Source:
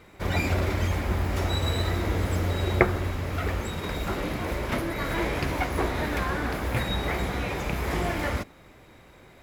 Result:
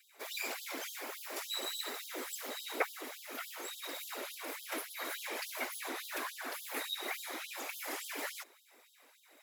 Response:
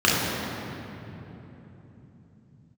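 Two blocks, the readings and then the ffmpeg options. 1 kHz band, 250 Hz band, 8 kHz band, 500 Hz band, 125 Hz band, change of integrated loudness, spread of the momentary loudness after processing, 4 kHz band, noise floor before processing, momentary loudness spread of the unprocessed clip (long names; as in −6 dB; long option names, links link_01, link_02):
−12.5 dB, −20.0 dB, 0.0 dB, −15.0 dB, below −40 dB, −12.0 dB, 6 LU, −5.0 dB, −52 dBFS, 5 LU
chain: -af "crystalizer=i=2.5:c=0,afftfilt=real='hypot(re,im)*cos(2*PI*random(0))':imag='hypot(re,im)*sin(2*PI*random(1))':win_size=512:overlap=0.75,afftfilt=real='re*gte(b*sr/1024,220*pow(3100/220,0.5+0.5*sin(2*PI*3.5*pts/sr)))':imag='im*gte(b*sr/1024,220*pow(3100/220,0.5+0.5*sin(2*PI*3.5*pts/sr)))':win_size=1024:overlap=0.75,volume=-4.5dB"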